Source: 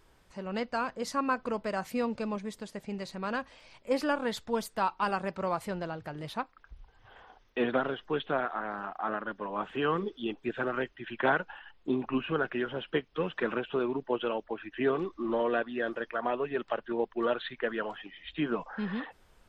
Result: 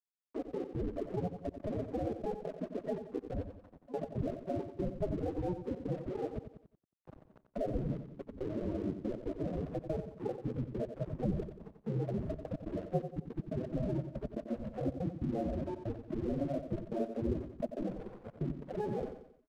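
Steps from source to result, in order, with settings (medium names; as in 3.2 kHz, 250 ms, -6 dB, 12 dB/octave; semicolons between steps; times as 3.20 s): elliptic band-pass 140–2100 Hz, stop band 40 dB; spectral gate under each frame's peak -10 dB weak; bass shelf 370 Hz +2 dB; in parallel at +1 dB: compressor with a negative ratio -46 dBFS, ratio -0.5; on the sum: sample-and-hold 35×; loudest bins only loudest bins 8; crossover distortion -58.5 dBFS; trance gate "xxxx.x.x" 141 bpm -24 dB; on a send: feedback delay 90 ms, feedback 38%, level -10 dB; on the sum: three bands compressed up and down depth 40%; trim +7 dB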